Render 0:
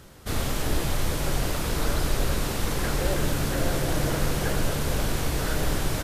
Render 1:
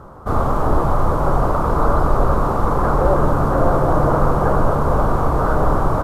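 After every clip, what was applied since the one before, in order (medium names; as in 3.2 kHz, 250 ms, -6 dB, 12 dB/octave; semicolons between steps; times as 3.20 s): FFT filter 320 Hz 0 dB, 1.2 kHz +10 dB, 1.8 kHz -13 dB, 2.6 kHz -21 dB; trim +8.5 dB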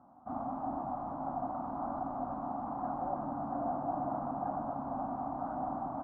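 two resonant band-passes 440 Hz, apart 1.5 oct; trim -9 dB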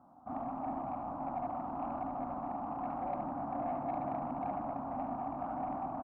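saturation -26.5 dBFS, distortion -23 dB; delay 72 ms -8 dB; trim -1 dB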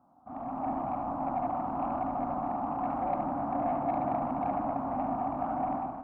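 level rider gain up to 10 dB; on a send at -13 dB: reverberation RT60 5.4 s, pre-delay 13 ms; on the sum: trim -4 dB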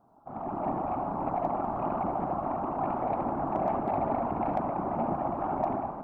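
whisper effect; hard clipper -19 dBFS, distortion -39 dB; trim +1.5 dB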